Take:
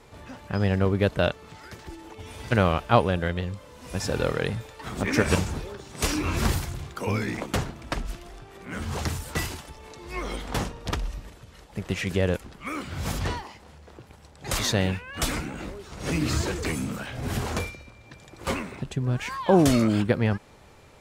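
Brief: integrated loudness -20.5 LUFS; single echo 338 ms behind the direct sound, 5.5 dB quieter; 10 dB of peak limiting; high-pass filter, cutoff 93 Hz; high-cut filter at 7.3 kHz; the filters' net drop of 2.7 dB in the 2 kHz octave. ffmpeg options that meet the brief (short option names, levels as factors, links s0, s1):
-af "highpass=93,lowpass=7300,equalizer=f=2000:t=o:g=-3.5,alimiter=limit=0.211:level=0:latency=1,aecho=1:1:338:0.531,volume=2.66"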